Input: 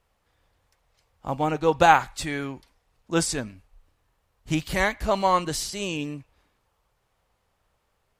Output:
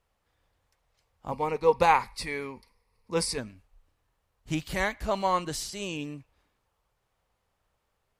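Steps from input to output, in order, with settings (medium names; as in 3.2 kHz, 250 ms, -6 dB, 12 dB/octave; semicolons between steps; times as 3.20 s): 1.31–3.38 s: rippled EQ curve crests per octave 0.89, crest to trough 12 dB; trim -5 dB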